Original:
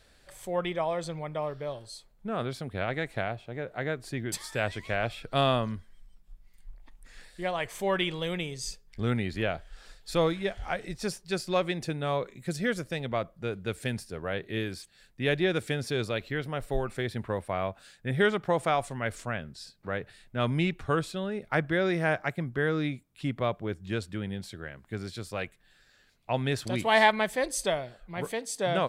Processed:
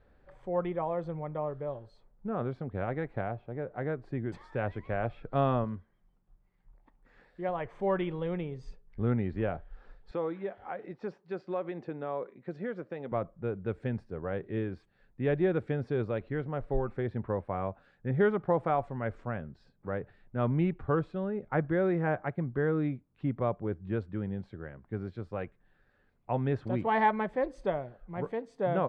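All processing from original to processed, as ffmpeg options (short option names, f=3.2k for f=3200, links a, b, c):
-filter_complex "[0:a]asettb=1/sr,asplit=3[a][b][c];[a]atrim=end=5.644[d];[b]atrim=start=5.64:end=7.49,asetpts=PTS-STARTPTS,afade=t=in:d=0.004:c=qsin,afade=t=out:st=1.846:d=0.004:c=qsin,highpass=51,bass=f=250:g=-3,treble=f=4k:g=4[e];[c]atrim=start=7.486[f];[d][e]acrossfade=d=0.004:c1=hsin:c2=qsin[g];[g][f]acrossfade=d=0.004:c1=qsin:c2=hsin,asettb=1/sr,asplit=3[h][i][j];[h]atrim=end=10.114[k];[i]atrim=start=10.11:end=13.12,asetpts=PTS-STARTPTS,afade=t=in:d=0.004:c=qsin,afade=t=out:st=3.006:d=0.004:c=qsin,highpass=260,lowpass=5.5k,acompressor=threshold=-31dB:ratio=2:attack=3.2:release=140:knee=1:detection=peak[l];[j]atrim=start=13.116[m];[k][l]acrossfade=d=0.004:c1=hsin:c2=qsin[n];[n][m]acrossfade=d=0.004:c1=qsin:c2=hsin,lowpass=1.1k,bandreject=f=650:w=12"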